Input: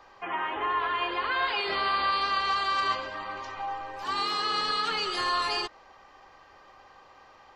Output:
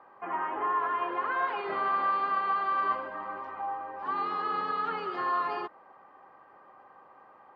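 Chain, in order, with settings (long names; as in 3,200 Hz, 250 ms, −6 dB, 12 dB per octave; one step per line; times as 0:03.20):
Chebyshev band-pass filter 170–1,300 Hz, order 2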